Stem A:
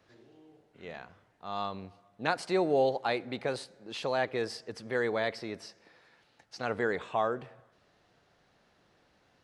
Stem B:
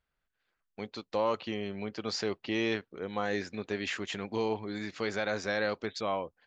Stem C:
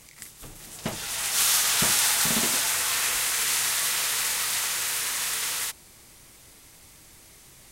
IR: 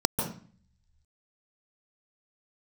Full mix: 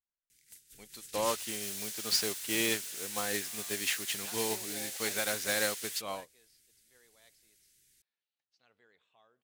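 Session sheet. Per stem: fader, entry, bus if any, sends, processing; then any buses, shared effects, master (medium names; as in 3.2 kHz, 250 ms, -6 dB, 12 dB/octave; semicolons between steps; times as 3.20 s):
-16.0 dB, 2.00 s, no send, peaking EQ 3.2 kHz +8 dB 1.2 oct
-0.5 dB, 0.00 s, no send, none
-1.0 dB, 0.30 s, no send, elliptic band-stop 440–1500 Hz; compression 4:1, threshold -36 dBFS, peak gain reduction 14 dB; wavefolder -34.5 dBFS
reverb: none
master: treble shelf 2.1 kHz +10.5 dB; upward expansion 2.5:1, over -40 dBFS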